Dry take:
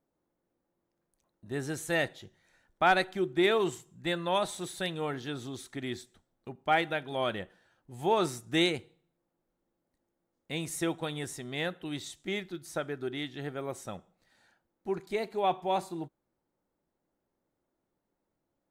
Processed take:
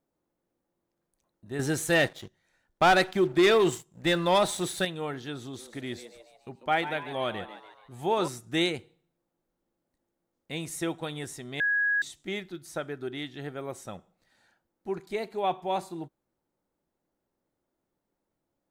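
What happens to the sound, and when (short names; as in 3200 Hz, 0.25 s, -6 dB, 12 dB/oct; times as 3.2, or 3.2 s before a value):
1.59–4.85 sample leveller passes 2
5.39–8.28 frequency-shifting echo 0.143 s, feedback 50%, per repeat +110 Hz, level -12 dB
11.6–12.02 bleep 1660 Hz -22.5 dBFS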